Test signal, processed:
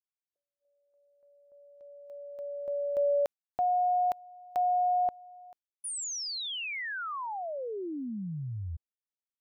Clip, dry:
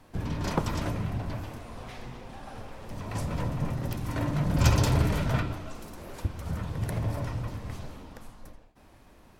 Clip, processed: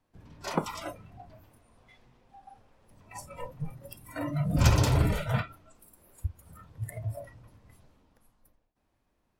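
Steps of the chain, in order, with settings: spectral noise reduction 20 dB

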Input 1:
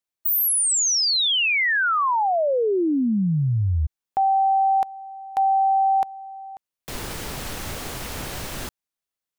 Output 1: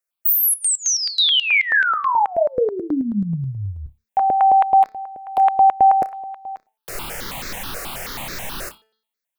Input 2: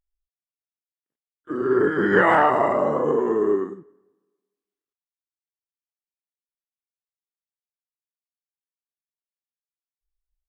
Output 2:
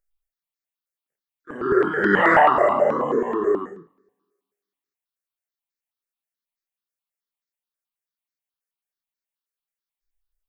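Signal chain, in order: peaking EQ 69 Hz -14 dB 2.2 oct; de-hum 219.6 Hz, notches 23; on a send: flutter echo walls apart 5.1 m, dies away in 0.2 s; on the sum: stepped phaser 9.3 Hz 900–3000 Hz; trim +5.5 dB

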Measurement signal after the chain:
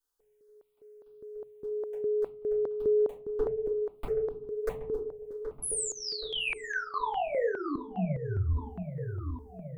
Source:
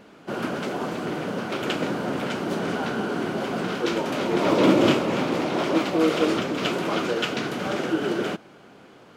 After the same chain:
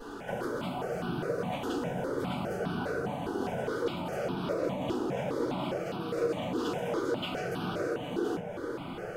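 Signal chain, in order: band-stop 2.1 kHz, Q 29; dynamic bell 1.8 kHz, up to -5 dB, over -42 dBFS, Q 1; compression 5:1, threshold -40 dBFS; on a send: filtered feedback delay 775 ms, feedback 67%, low-pass 1.2 kHz, level -8 dB; on the sum: simulated room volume 130 m³, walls furnished, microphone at 4.9 m; stepped phaser 4.9 Hz 600–2000 Hz

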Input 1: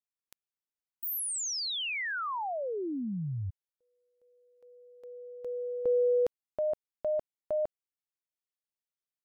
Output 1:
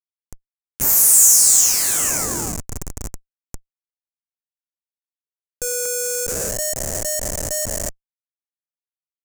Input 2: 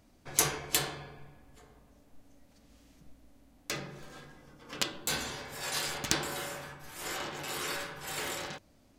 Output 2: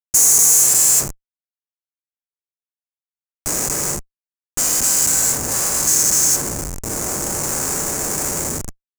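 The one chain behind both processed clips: every event in the spectrogram widened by 480 ms; Schmitt trigger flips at -27 dBFS; resonant high shelf 5 kHz +13 dB, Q 3

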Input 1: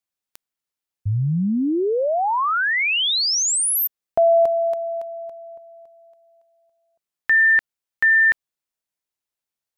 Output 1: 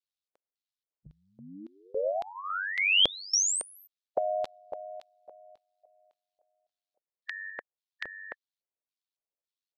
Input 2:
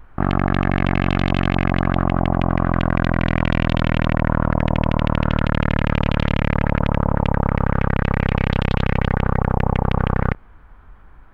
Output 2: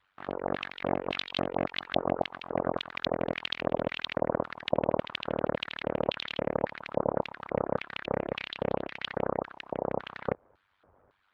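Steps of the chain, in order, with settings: ring modulator 48 Hz; harmonic-percussive split harmonic -16 dB; LFO band-pass square 1.8 Hz 540–3900 Hz; trim +6.5 dB

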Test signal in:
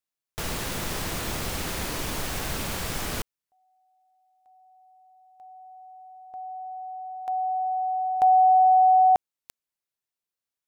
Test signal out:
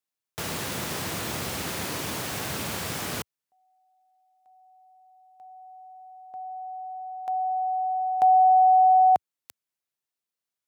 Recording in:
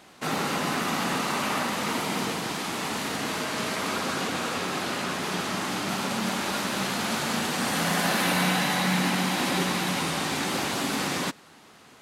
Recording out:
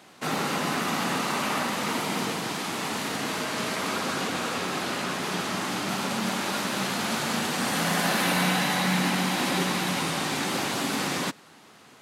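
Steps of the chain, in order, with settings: high-pass 87 Hz 24 dB/octave

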